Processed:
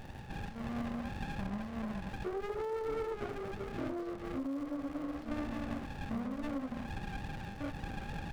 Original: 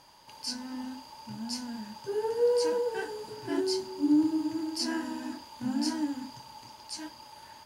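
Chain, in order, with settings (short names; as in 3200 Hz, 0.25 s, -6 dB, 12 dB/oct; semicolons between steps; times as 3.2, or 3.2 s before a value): HPF 160 Hz 6 dB/oct; vocal rider within 4 dB 2 s; limiter -23 dBFS, peak gain reduction 6 dB; compressor, threshold -38 dBFS, peak gain reduction 11.5 dB; synth low-pass 1100 Hz, resonance Q 9.7; crackle 510/s -49 dBFS; speed mistake 48 kHz file played as 44.1 kHz; running maximum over 33 samples; gain +2 dB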